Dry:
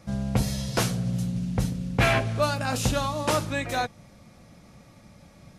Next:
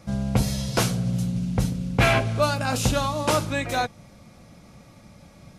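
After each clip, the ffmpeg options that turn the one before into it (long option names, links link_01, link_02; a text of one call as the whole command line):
ffmpeg -i in.wav -af "bandreject=frequency=1800:width=15,volume=2.5dB" out.wav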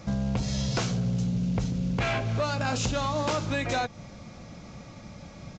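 ffmpeg -i in.wav -af "acompressor=threshold=-27dB:ratio=6,aresample=16000,asoftclip=type=tanh:threshold=-24.5dB,aresample=44100,volume=4.5dB" out.wav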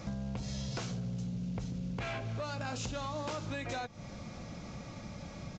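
ffmpeg -i in.wav -af "acompressor=threshold=-39dB:ratio=3" out.wav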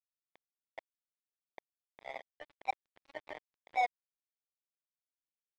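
ffmpeg -i in.wav -af "asuperpass=centerf=700:order=4:qfactor=3.8,flanger=delay=3.6:depth=2.1:regen=53:speed=1.6:shape=sinusoidal,acrusher=bits=6:mix=0:aa=0.5,volume=15dB" out.wav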